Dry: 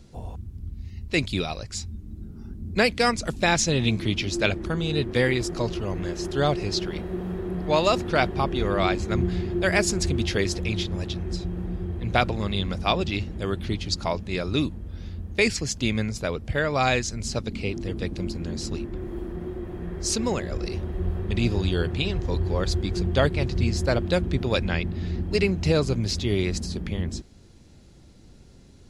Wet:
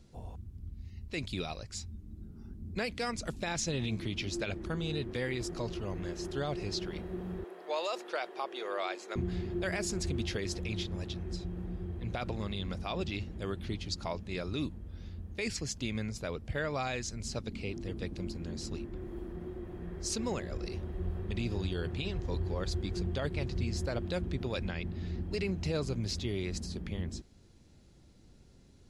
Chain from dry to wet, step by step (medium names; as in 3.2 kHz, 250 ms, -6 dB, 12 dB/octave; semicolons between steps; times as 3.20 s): 7.44–9.16 s: high-pass 420 Hz 24 dB/octave; peak limiter -15.5 dBFS, peak gain reduction 11.5 dB; trim -8.5 dB